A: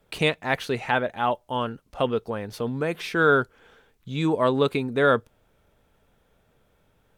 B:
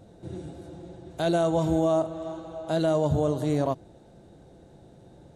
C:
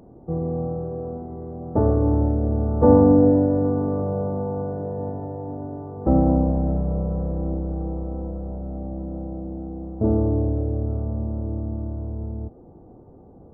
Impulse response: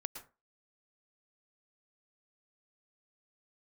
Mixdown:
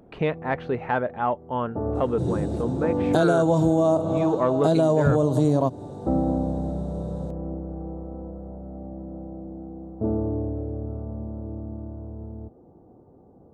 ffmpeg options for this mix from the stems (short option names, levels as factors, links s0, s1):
-filter_complex "[0:a]lowpass=1400,acontrast=44,volume=0.562,asplit=2[s0][s1];[1:a]equalizer=f=125:t=o:w=1:g=11,equalizer=f=250:t=o:w=1:g=9,equalizer=f=500:t=o:w=1:g=7,equalizer=f=1000:t=o:w=1:g=9,equalizer=f=2000:t=o:w=1:g=-5,equalizer=f=4000:t=o:w=1:g=4,equalizer=f=8000:t=o:w=1:g=8,adelay=1950,volume=1.12[s2];[2:a]highpass=f=97:p=1,volume=0.631[s3];[s1]apad=whole_len=596871[s4];[s3][s4]sidechaincompress=threshold=0.0398:ratio=8:attack=16:release=677[s5];[s0][s2][s5]amix=inputs=3:normalize=0,acompressor=threshold=0.158:ratio=5"